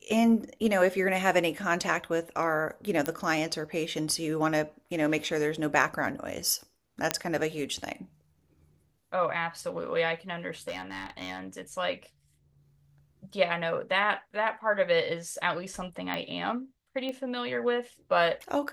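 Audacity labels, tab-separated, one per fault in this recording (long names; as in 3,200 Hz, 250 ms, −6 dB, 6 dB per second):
3.060000	3.060000	click −13 dBFS
7.110000	7.110000	click −8 dBFS
10.680000	11.390000	clipping −30 dBFS
16.140000	16.140000	click −18 dBFS
17.090000	17.090000	click −23 dBFS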